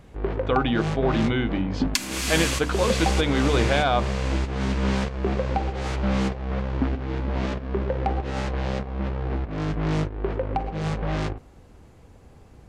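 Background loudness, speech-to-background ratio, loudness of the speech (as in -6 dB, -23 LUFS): -27.0 LUFS, 2.0 dB, -25.0 LUFS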